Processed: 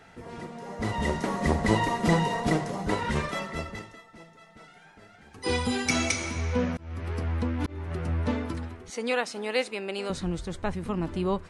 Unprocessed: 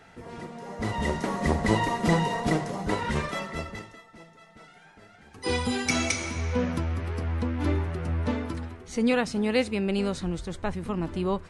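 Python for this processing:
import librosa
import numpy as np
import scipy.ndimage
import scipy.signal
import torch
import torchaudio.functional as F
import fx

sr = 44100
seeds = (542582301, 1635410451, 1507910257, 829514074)

y = fx.auto_swell(x, sr, attack_ms=350.0, at=(6.63, 7.91))
y = fx.highpass(y, sr, hz=450.0, slope=12, at=(8.9, 10.1))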